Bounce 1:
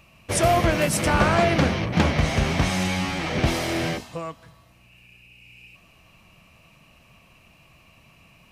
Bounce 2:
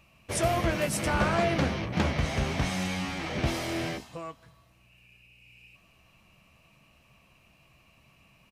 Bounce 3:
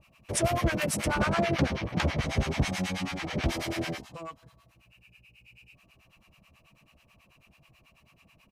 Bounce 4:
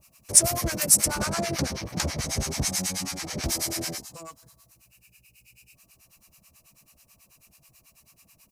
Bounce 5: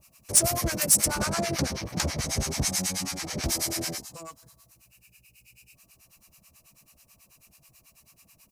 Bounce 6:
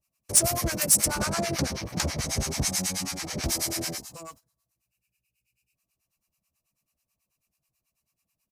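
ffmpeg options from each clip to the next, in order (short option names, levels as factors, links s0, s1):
-filter_complex "[0:a]asplit=2[s0][s1];[s1]adelay=15,volume=0.266[s2];[s0][s2]amix=inputs=2:normalize=0,volume=0.447"
-filter_complex "[0:a]acrossover=split=750[s0][s1];[s0]aeval=exprs='val(0)*(1-1/2+1/2*cos(2*PI*9.2*n/s))':c=same[s2];[s1]aeval=exprs='val(0)*(1-1/2-1/2*cos(2*PI*9.2*n/s))':c=same[s3];[s2][s3]amix=inputs=2:normalize=0,volume=1.58"
-af "aexciter=amount=6.4:drive=6.7:freq=4600,volume=0.75"
-af "asoftclip=type=hard:threshold=0.224"
-af "agate=range=0.0891:threshold=0.00398:ratio=16:detection=peak"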